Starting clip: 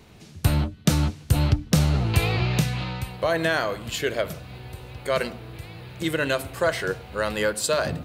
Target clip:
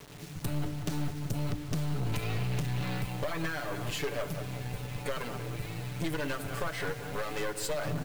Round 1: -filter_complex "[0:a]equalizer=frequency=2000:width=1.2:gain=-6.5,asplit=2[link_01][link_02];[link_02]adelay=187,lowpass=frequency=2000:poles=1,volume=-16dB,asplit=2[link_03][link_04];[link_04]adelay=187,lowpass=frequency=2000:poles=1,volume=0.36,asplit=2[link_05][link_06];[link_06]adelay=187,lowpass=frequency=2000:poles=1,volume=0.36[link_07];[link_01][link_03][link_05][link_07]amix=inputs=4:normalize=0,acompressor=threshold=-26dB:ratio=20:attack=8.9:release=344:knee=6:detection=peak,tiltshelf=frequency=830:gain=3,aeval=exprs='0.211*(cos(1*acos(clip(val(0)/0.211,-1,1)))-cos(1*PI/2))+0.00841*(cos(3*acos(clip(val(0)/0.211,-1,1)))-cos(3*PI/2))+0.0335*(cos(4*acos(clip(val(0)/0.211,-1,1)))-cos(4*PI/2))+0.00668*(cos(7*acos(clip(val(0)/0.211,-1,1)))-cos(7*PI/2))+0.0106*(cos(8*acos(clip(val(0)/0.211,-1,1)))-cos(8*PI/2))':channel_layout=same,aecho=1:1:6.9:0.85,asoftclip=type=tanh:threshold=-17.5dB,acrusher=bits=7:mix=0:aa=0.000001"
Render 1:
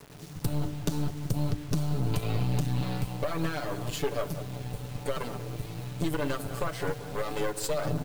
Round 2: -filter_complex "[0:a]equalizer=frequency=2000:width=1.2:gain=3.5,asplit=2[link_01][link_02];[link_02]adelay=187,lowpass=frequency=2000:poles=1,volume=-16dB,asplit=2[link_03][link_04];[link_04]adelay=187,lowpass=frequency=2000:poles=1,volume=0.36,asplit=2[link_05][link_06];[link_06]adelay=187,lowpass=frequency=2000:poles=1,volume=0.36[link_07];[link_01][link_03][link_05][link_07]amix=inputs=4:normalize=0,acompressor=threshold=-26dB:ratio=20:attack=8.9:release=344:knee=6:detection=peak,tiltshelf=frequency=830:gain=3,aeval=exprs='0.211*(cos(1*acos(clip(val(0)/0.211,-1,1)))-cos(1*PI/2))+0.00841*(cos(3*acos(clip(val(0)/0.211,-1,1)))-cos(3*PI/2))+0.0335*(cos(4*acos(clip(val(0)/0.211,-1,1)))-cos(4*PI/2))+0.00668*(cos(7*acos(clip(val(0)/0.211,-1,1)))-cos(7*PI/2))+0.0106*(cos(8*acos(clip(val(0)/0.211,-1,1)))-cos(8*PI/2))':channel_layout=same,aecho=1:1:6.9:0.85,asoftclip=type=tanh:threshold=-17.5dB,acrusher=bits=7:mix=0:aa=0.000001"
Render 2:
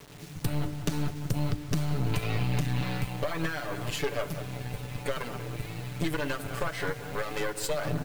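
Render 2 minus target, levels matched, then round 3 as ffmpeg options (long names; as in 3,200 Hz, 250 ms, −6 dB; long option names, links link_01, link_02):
soft clipping: distortion −7 dB
-filter_complex "[0:a]equalizer=frequency=2000:width=1.2:gain=3.5,asplit=2[link_01][link_02];[link_02]adelay=187,lowpass=frequency=2000:poles=1,volume=-16dB,asplit=2[link_03][link_04];[link_04]adelay=187,lowpass=frequency=2000:poles=1,volume=0.36,asplit=2[link_05][link_06];[link_06]adelay=187,lowpass=frequency=2000:poles=1,volume=0.36[link_07];[link_01][link_03][link_05][link_07]amix=inputs=4:normalize=0,acompressor=threshold=-26dB:ratio=20:attack=8.9:release=344:knee=6:detection=peak,tiltshelf=frequency=830:gain=3,aeval=exprs='0.211*(cos(1*acos(clip(val(0)/0.211,-1,1)))-cos(1*PI/2))+0.00841*(cos(3*acos(clip(val(0)/0.211,-1,1)))-cos(3*PI/2))+0.0335*(cos(4*acos(clip(val(0)/0.211,-1,1)))-cos(4*PI/2))+0.00668*(cos(7*acos(clip(val(0)/0.211,-1,1)))-cos(7*PI/2))+0.0106*(cos(8*acos(clip(val(0)/0.211,-1,1)))-cos(8*PI/2))':channel_layout=same,aecho=1:1:6.9:0.85,asoftclip=type=tanh:threshold=-25.5dB,acrusher=bits=7:mix=0:aa=0.000001"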